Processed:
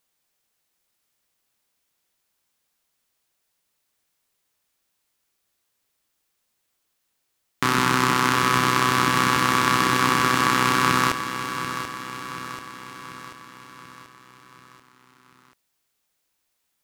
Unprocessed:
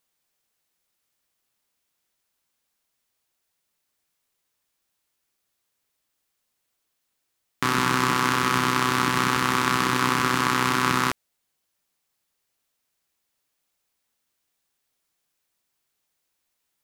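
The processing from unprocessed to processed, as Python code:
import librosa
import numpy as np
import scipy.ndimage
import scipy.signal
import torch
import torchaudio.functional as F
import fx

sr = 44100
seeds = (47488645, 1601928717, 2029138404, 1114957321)

y = fx.echo_feedback(x, sr, ms=736, feedback_pct=55, wet_db=-10)
y = F.gain(torch.from_numpy(y), 2.0).numpy()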